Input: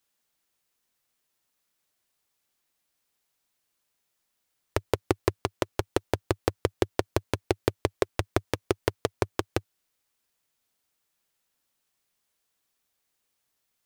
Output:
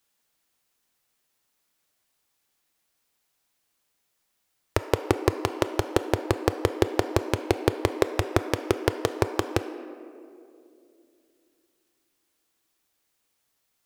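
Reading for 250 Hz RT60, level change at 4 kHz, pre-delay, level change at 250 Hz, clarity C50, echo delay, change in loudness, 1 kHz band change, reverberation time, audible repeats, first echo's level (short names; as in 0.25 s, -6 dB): 3.5 s, +3.0 dB, 3 ms, +4.5 dB, 10.0 dB, none, +3.5 dB, +4.0 dB, 2.6 s, none, none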